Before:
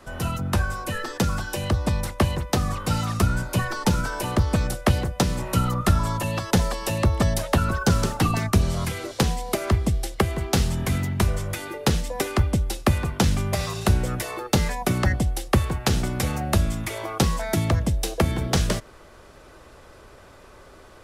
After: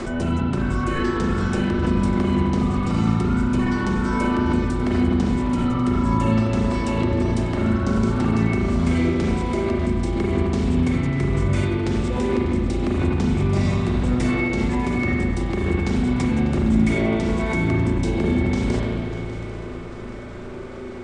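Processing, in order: steep low-pass 9.1 kHz 72 dB/octave; bass shelf 140 Hz +4.5 dB; hum notches 60/120 Hz; reverse; compression, threshold -27 dBFS, peak gain reduction 16 dB; reverse; peak limiter -22.5 dBFS, peak gain reduction 5 dB; small resonant body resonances 250/350/2200 Hz, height 15 dB, ringing for 80 ms; on a send: shuffle delay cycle 795 ms, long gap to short 3:1, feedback 50%, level -15 dB; on the sum: spring tank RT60 2.4 s, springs 36/41 ms, chirp 30 ms, DRR -5 dB; swell ahead of each attack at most 30 dB/s

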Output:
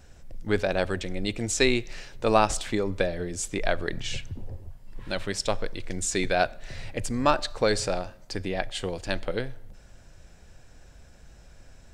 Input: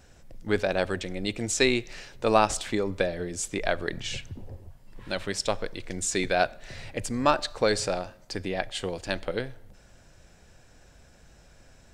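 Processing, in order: bass shelf 80 Hz +7.5 dB

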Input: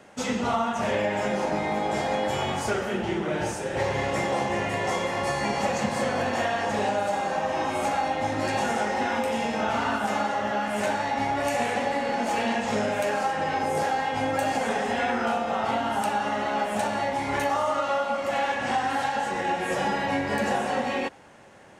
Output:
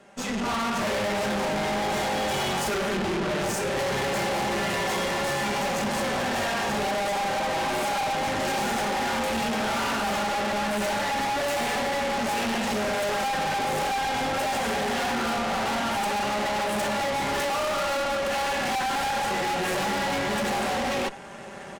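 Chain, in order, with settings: comb 5.1 ms, depth 53%; level rider gain up to 14 dB; valve stage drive 27 dB, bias 0.8; trim +1.5 dB

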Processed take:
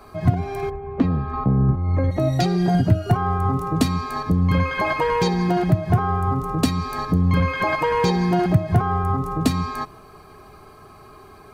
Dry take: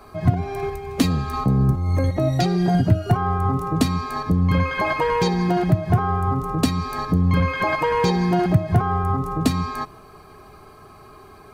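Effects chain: 0.69–2.10 s: low-pass 1.1 kHz -> 2.4 kHz 12 dB/octave

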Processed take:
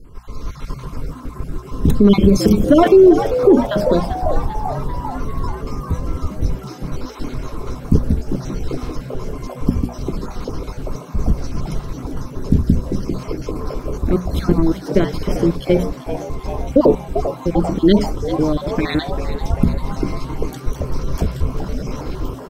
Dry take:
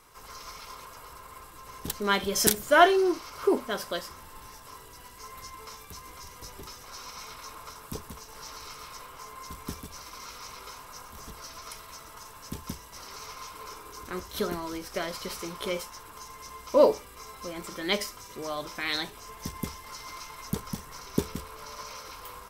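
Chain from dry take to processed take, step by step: random holes in the spectrogram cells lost 36%; FFT filter 270 Hz 0 dB, 780 Hz -20 dB, 3.5 kHz -22 dB, 13 kHz -28 dB; compression, threshold -30 dBFS, peak gain reduction 7.5 dB; bass shelf 64 Hz +9.5 dB; hum notches 60/120/180/240 Hz; on a send: frequency-shifting echo 393 ms, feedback 65%, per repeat +120 Hz, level -13 dB; on the sum: level rider gain up to 6 dB; loudness maximiser +22 dB; trim -1 dB

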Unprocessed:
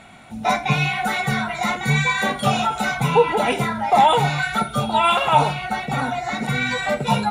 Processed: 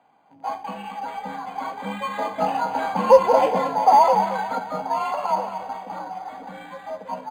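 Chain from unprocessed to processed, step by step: Doppler pass-by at 3.35 s, 7 m/s, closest 4.8 m; high-order bell 670 Hz +11.5 dB; in parallel at -11 dB: word length cut 6-bit, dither none; on the sum: dynamic bell 1.1 kHz, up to -3 dB, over -15 dBFS, Q 1; on a send: feedback delay 225 ms, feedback 43%, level -10.5 dB; on the sum: frequency shift +52 Hz; high-pass 99 Hz; decimation joined by straight lines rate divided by 8×; trim -8 dB

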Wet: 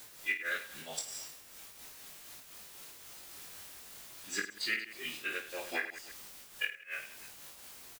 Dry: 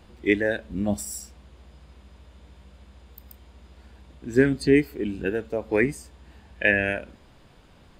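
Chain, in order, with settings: gate -42 dBFS, range -18 dB; band-pass filter 4.1 kHz, Q 0.63; tilt EQ +3.5 dB/octave; level rider gain up to 7 dB; low-pass that closes with the level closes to 2.8 kHz, closed at -22.5 dBFS; formant-preserving pitch shift -4 st; added noise white -47 dBFS; inverted gate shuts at -14 dBFS, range -27 dB; reverse bouncing-ball echo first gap 20 ms, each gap 1.6×, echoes 5; random flutter of the level, depth 60%; trim -3.5 dB

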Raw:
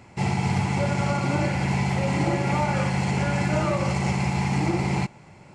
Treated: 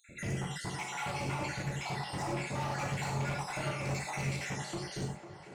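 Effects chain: random holes in the spectrogram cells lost 67%; treble shelf 6.6 kHz +8 dB; in parallel at -1 dB: compression, threshold -36 dBFS, peak gain reduction 14.5 dB; on the sum: peak limiter -17 dBFS, peak gain reduction 5.5 dB; overload inside the chain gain 28 dB; on a send: band-passed feedback delay 500 ms, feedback 57%, band-pass 680 Hz, level -8 dB; on the sum: gated-style reverb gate 130 ms flat, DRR -0.5 dB; trim -7.5 dB

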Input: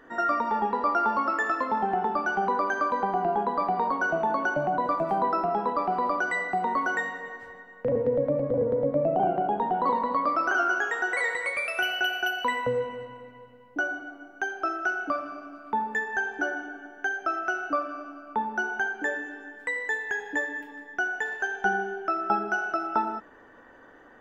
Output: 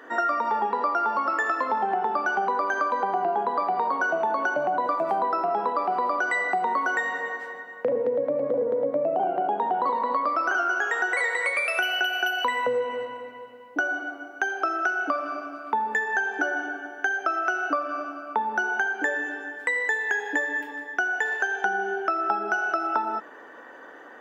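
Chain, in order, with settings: high-pass 340 Hz 12 dB/octave; compression, threshold -30 dBFS, peak gain reduction 10 dB; trim +8 dB

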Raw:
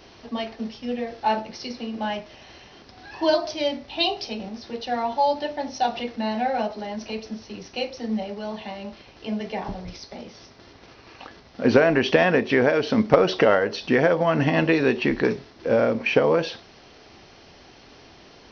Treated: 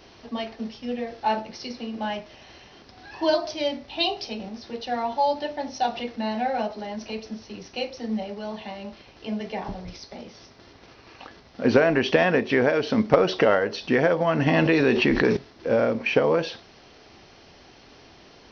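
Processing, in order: 14.46–15.37 s: level flattener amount 70%; trim -1.5 dB

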